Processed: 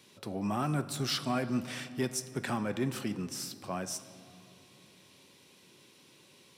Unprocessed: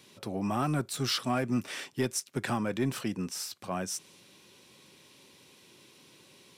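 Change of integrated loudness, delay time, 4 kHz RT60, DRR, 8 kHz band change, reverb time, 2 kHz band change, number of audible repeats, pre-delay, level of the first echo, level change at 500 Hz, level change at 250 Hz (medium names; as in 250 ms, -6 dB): -2.0 dB, no echo, 1.7 s, 11.5 dB, -2.5 dB, 2.9 s, -2.0 dB, no echo, 3 ms, no echo, -2.0 dB, -2.0 dB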